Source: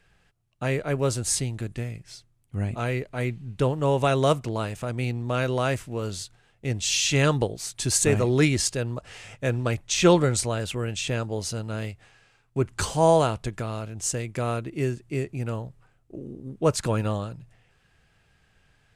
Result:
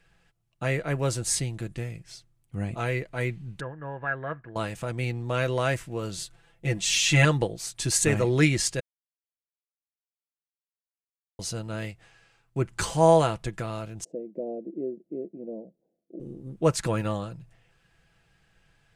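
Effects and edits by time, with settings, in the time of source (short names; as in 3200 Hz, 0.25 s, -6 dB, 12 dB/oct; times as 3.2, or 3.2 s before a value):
3.6–4.56 ladder low-pass 1700 Hz, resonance 90%
6.17–7.25 comb 5.9 ms, depth 81%
8.8–11.39 mute
14.04–16.2 elliptic band-pass 200–620 Hz
whole clip: comb 6 ms, depth 37%; dynamic EQ 1900 Hz, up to +4 dB, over -44 dBFS, Q 2.5; gain -2 dB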